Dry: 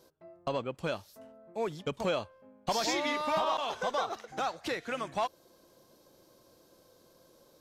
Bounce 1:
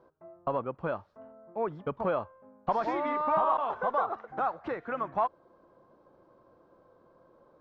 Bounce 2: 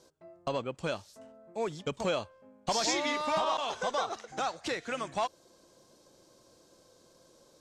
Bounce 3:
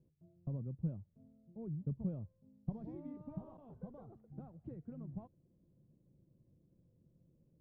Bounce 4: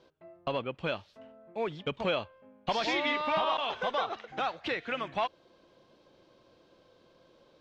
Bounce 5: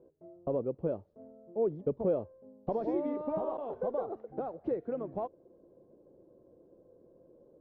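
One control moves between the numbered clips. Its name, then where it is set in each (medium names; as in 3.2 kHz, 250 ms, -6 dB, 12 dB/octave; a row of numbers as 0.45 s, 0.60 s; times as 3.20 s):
resonant low-pass, frequency: 1.2 kHz, 7.9 kHz, 150 Hz, 3 kHz, 450 Hz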